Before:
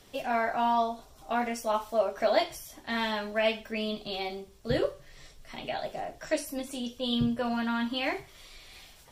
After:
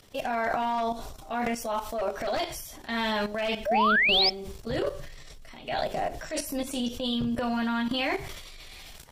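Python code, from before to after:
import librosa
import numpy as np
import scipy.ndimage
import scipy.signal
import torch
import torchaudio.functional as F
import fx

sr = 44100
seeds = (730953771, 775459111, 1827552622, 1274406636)

y = np.minimum(x, 2.0 * 10.0 ** (-20.5 / 20.0) - x)
y = fx.low_shelf(y, sr, hz=67.0, db=6.0)
y = fx.rider(y, sr, range_db=3, speed_s=2.0)
y = fx.peak_eq(y, sr, hz=fx.line((3.75, 11000.0), (4.21, 2100.0)), db=-14.5, octaves=0.64, at=(3.75, 4.21), fade=0.02)
y = fx.level_steps(y, sr, step_db=18)
y = fx.spec_paint(y, sr, seeds[0], shape='rise', start_s=3.66, length_s=0.64, low_hz=560.0, high_hz=5400.0, level_db=-31.0)
y = fx.transient(y, sr, attack_db=-5, sustain_db=8)
y = y * 10.0 ** (8.5 / 20.0)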